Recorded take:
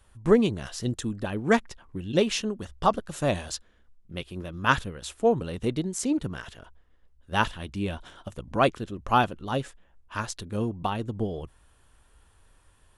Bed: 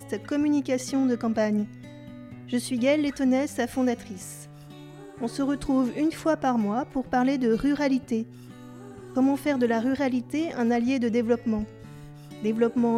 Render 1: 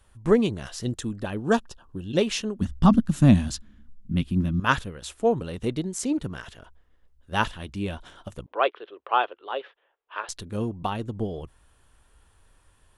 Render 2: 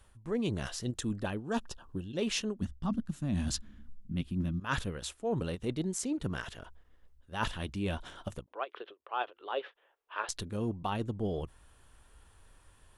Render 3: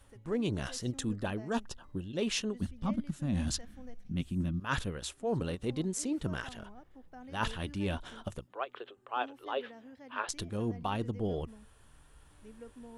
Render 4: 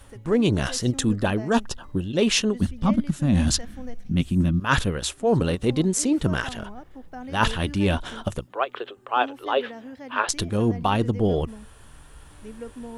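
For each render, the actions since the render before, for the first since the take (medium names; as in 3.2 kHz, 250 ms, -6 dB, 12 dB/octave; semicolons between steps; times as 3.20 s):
1.38–2.11 s: Butterworth band-stop 2.1 kHz, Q 2.3; 2.61–4.60 s: resonant low shelf 330 Hz +11 dB, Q 3; 8.46–10.29 s: elliptic band-pass 410–3400 Hz
reverse; compression 16:1, threshold -29 dBFS, peak gain reduction 19 dB; reverse; endings held to a fixed fall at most 450 dB/s
add bed -27 dB
trim +12 dB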